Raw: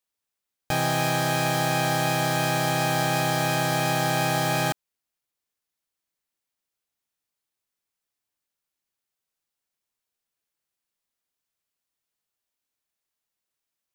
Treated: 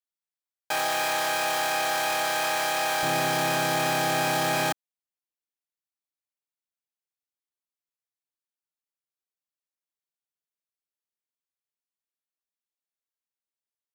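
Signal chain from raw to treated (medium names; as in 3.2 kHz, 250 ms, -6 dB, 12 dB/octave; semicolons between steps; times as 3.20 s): waveshaping leveller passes 3; high-pass 560 Hz 12 dB/octave, from 3.03 s 210 Hz; trim -7 dB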